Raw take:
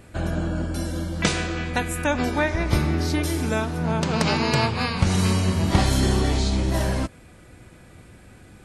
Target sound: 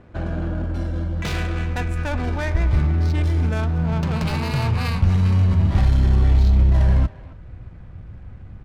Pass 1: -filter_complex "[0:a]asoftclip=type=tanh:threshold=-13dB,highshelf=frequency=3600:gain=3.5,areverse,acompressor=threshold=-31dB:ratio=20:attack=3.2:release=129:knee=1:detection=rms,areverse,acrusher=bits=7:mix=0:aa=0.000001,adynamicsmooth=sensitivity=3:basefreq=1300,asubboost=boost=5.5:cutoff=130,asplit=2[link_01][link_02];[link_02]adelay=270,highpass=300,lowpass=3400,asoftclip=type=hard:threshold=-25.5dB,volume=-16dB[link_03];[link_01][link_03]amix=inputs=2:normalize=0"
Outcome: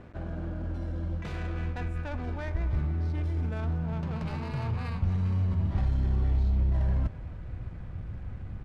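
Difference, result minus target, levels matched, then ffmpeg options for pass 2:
downward compressor: peak gain reduction +10.5 dB
-filter_complex "[0:a]asoftclip=type=tanh:threshold=-13dB,highshelf=frequency=3600:gain=3.5,areverse,acompressor=threshold=-20dB:ratio=20:attack=3.2:release=129:knee=1:detection=rms,areverse,acrusher=bits=7:mix=0:aa=0.000001,adynamicsmooth=sensitivity=3:basefreq=1300,asubboost=boost=5.5:cutoff=130,asplit=2[link_01][link_02];[link_02]adelay=270,highpass=300,lowpass=3400,asoftclip=type=hard:threshold=-25.5dB,volume=-16dB[link_03];[link_01][link_03]amix=inputs=2:normalize=0"

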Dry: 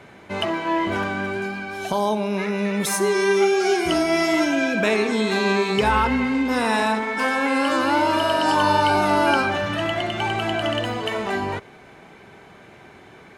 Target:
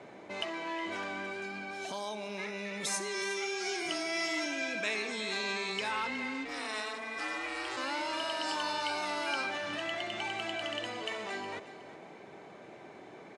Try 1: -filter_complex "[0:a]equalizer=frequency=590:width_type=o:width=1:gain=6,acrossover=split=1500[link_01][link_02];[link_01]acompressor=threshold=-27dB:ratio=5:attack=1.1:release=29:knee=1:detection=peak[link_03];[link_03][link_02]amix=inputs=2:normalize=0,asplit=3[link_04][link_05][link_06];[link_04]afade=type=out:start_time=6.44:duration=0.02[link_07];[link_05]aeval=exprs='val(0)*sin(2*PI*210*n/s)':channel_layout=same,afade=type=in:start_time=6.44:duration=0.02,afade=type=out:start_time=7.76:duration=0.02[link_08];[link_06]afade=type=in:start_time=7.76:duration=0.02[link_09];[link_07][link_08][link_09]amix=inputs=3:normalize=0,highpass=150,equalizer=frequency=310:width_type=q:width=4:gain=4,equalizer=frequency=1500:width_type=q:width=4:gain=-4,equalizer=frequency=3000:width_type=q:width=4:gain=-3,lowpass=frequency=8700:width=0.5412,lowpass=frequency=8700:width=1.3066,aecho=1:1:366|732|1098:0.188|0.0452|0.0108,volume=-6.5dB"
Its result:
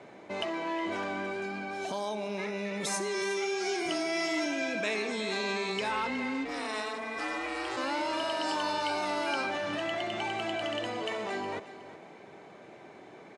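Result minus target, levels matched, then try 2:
downward compressor: peak gain reduction −6 dB
-filter_complex "[0:a]equalizer=frequency=590:width_type=o:width=1:gain=6,acrossover=split=1500[link_01][link_02];[link_01]acompressor=threshold=-34.5dB:ratio=5:attack=1.1:release=29:knee=1:detection=peak[link_03];[link_03][link_02]amix=inputs=2:normalize=0,asplit=3[link_04][link_05][link_06];[link_04]afade=type=out:start_time=6.44:duration=0.02[link_07];[link_05]aeval=exprs='val(0)*sin(2*PI*210*n/s)':channel_layout=same,afade=type=in:start_time=6.44:duration=0.02,afade=type=out:start_time=7.76:duration=0.02[link_08];[link_06]afade=type=in:start_time=7.76:duration=0.02[link_09];[link_07][link_08][link_09]amix=inputs=3:normalize=0,highpass=150,equalizer=frequency=310:width_type=q:width=4:gain=4,equalizer=frequency=1500:width_type=q:width=4:gain=-4,equalizer=frequency=3000:width_type=q:width=4:gain=-3,lowpass=frequency=8700:width=0.5412,lowpass=frequency=8700:width=1.3066,aecho=1:1:366|732|1098:0.188|0.0452|0.0108,volume=-6.5dB"

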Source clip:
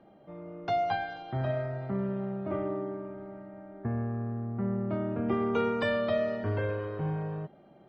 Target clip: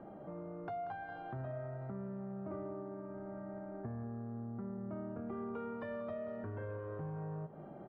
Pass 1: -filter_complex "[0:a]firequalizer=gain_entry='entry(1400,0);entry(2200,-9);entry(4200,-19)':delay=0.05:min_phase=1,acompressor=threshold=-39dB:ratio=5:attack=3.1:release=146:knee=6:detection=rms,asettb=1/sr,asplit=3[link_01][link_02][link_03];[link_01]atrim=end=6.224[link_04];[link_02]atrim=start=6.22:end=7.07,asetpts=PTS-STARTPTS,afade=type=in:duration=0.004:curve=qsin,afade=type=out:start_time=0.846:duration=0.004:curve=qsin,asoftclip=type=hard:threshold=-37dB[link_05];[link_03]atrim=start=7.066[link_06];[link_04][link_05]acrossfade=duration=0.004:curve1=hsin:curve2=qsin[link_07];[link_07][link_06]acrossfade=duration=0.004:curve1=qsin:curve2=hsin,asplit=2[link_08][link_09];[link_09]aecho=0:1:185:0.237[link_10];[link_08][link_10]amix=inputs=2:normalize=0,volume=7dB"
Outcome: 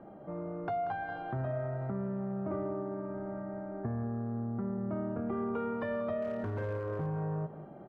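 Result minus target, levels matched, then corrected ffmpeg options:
downward compressor: peak gain reduction −7.5 dB
-filter_complex "[0:a]firequalizer=gain_entry='entry(1400,0);entry(2200,-9);entry(4200,-19)':delay=0.05:min_phase=1,acompressor=threshold=-48.5dB:ratio=5:attack=3.1:release=146:knee=6:detection=rms,asettb=1/sr,asplit=3[link_01][link_02][link_03];[link_01]atrim=end=6.224[link_04];[link_02]atrim=start=6.22:end=7.07,asetpts=PTS-STARTPTS,afade=type=in:duration=0.004:curve=qsin,afade=type=out:start_time=0.846:duration=0.004:curve=qsin,asoftclip=type=hard:threshold=-37dB[link_05];[link_03]atrim=start=7.066[link_06];[link_04][link_05]acrossfade=duration=0.004:curve1=hsin:curve2=qsin[link_07];[link_07][link_06]acrossfade=duration=0.004:curve1=qsin:curve2=hsin,asplit=2[link_08][link_09];[link_09]aecho=0:1:185:0.237[link_10];[link_08][link_10]amix=inputs=2:normalize=0,volume=7dB"

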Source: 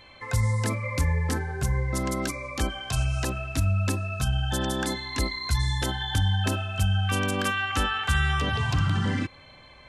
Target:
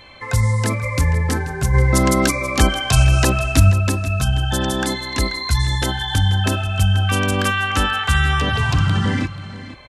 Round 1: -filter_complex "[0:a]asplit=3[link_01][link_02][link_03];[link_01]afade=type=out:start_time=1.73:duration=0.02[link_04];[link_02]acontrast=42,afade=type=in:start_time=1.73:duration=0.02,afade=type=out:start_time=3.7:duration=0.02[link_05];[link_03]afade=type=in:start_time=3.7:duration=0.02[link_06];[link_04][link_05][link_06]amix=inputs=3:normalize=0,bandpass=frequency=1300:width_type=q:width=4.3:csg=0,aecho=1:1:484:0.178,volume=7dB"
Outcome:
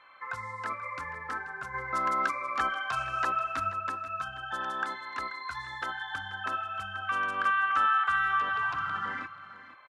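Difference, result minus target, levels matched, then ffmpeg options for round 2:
1,000 Hz band +8.5 dB
-filter_complex "[0:a]asplit=3[link_01][link_02][link_03];[link_01]afade=type=out:start_time=1.73:duration=0.02[link_04];[link_02]acontrast=42,afade=type=in:start_time=1.73:duration=0.02,afade=type=out:start_time=3.7:duration=0.02[link_05];[link_03]afade=type=in:start_time=3.7:duration=0.02[link_06];[link_04][link_05][link_06]amix=inputs=3:normalize=0,aecho=1:1:484:0.178,volume=7dB"

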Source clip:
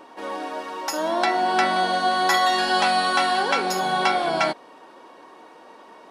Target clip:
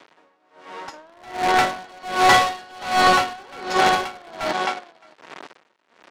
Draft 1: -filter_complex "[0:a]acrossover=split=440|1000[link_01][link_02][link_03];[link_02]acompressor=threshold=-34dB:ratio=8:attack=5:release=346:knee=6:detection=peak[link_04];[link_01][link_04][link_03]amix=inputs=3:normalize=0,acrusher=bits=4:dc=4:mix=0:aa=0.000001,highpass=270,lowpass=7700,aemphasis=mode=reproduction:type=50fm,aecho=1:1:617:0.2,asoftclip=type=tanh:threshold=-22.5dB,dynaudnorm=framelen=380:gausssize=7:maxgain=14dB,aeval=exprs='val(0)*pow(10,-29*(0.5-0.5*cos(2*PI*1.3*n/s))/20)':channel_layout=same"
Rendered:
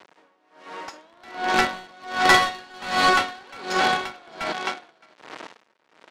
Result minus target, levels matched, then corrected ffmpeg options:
downward compressor: peak gain reduction +14 dB
-af "acrusher=bits=4:dc=4:mix=0:aa=0.000001,highpass=270,lowpass=7700,aemphasis=mode=reproduction:type=50fm,aecho=1:1:617:0.2,asoftclip=type=tanh:threshold=-22.5dB,dynaudnorm=framelen=380:gausssize=7:maxgain=14dB,aeval=exprs='val(0)*pow(10,-29*(0.5-0.5*cos(2*PI*1.3*n/s))/20)':channel_layout=same"

